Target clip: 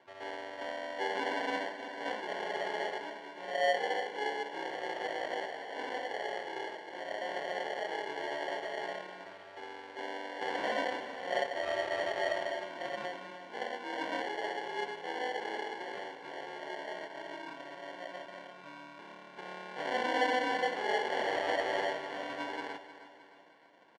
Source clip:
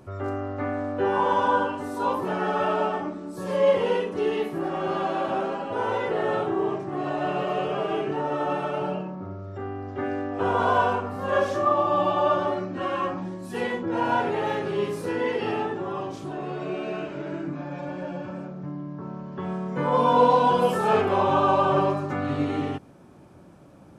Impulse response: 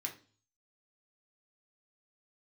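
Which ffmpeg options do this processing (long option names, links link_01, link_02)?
-filter_complex "[0:a]asettb=1/sr,asplit=3[link_01][link_02][link_03];[link_01]atrim=end=5.454[link_04];[link_02]atrim=start=5.45:end=7.28,asetpts=PTS-STARTPTS,afade=type=in:duration=0.004:curve=qsin,afade=type=out:start_time=1.826:duration=0.004:curve=qsin,aemphasis=mode=production:type=riaa[link_05];[link_03]atrim=start=7.276[link_06];[link_04][link_05]acrossfade=duration=0.004:curve1=hsin:curve2=qsin[link_07];[link_07][link_06]acrossfade=duration=0.004:curve1=qsin:curve2=hsin,asplit=2[link_08][link_09];[link_09]aeval=exprs='0.15*(abs(mod(val(0)/0.15+3,4)-2)-1)':channel_layout=same,volume=-11dB[link_10];[link_08][link_10]amix=inputs=2:normalize=0,acrusher=samples=35:mix=1:aa=0.000001,highpass=610,lowpass=2900,aecho=1:1:310|620|930|1240|1550:0.211|0.108|0.055|0.028|0.0143,volume=-8dB"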